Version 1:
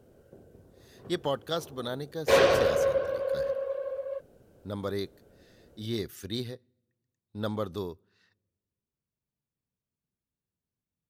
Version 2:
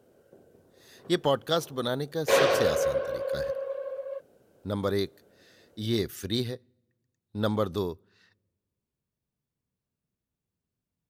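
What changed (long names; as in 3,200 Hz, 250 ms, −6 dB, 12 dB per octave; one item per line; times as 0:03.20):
speech +5.0 dB
background: add high-pass filter 290 Hz 6 dB per octave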